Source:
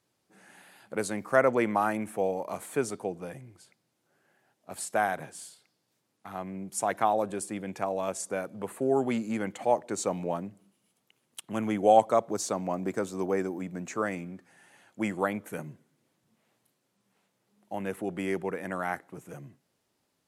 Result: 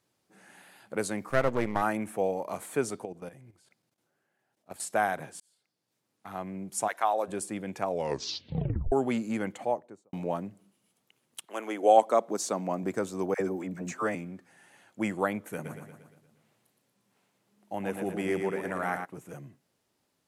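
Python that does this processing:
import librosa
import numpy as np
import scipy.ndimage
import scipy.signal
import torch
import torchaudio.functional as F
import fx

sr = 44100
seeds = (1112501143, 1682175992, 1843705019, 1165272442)

y = fx.halfwave_gain(x, sr, db=-12.0, at=(1.29, 1.81), fade=0.02)
y = fx.level_steps(y, sr, step_db=13, at=(3.05, 4.8))
y = fx.highpass(y, sr, hz=fx.line((6.87, 930.0), (7.27, 380.0)), slope=12, at=(6.87, 7.27), fade=0.02)
y = fx.studio_fade_out(y, sr, start_s=9.42, length_s=0.71)
y = fx.highpass(y, sr, hz=fx.line((11.45, 440.0), (12.82, 110.0)), slope=24, at=(11.45, 12.82), fade=0.02)
y = fx.dispersion(y, sr, late='lows', ms=65.0, hz=780.0, at=(13.34, 14.15))
y = fx.echo_feedback(y, sr, ms=117, feedback_pct=54, wet_db=-6, at=(15.64, 19.04), fade=0.02)
y = fx.edit(y, sr, fx.fade_in_span(start_s=5.4, length_s=0.9),
    fx.tape_stop(start_s=7.86, length_s=1.06), tone=tone)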